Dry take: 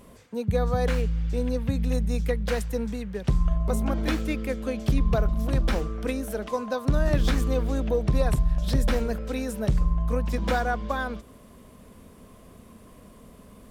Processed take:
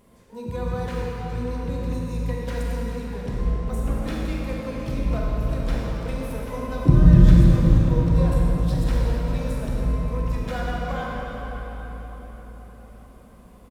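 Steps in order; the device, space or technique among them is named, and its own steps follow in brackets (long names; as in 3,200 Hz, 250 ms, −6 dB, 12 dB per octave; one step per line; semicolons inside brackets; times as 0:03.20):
0:06.74–0:07.58: low shelf with overshoot 240 Hz +11.5 dB, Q 3
shimmer-style reverb (pitch-shifted copies added +12 semitones −12 dB; convolution reverb RT60 5.1 s, pre-delay 27 ms, DRR −4 dB)
level −8 dB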